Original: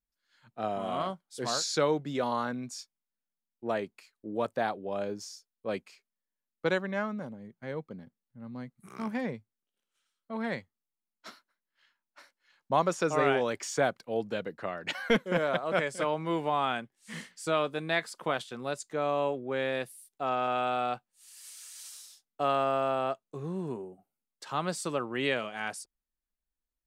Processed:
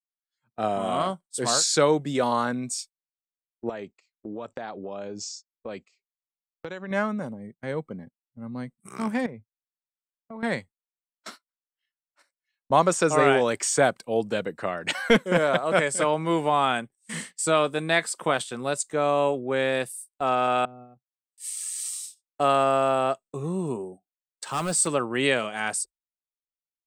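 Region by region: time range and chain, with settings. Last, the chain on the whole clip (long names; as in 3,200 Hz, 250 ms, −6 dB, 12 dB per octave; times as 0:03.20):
0:03.69–0:06.91: Butterworth low-pass 7,700 Hz 96 dB per octave + downward compressor 12 to 1, threshold −37 dBFS + low-pass that shuts in the quiet parts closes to 1,900 Hz, open at −43.5 dBFS
0:09.26–0:10.43: high-shelf EQ 3,000 Hz −12 dB + downward compressor 10 to 1, threshold −41 dBFS
0:20.65–0:21.38: downward compressor 5 to 1, threshold −32 dBFS + resonant band-pass 150 Hz, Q 1.7
0:24.44–0:24.87: hard clipping −28 dBFS + noise that follows the level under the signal 26 dB
whole clip: noise reduction from a noise print of the clip's start 13 dB; noise gate −50 dBFS, range −19 dB; parametric band 8,300 Hz +14 dB 0.3 octaves; level +6.5 dB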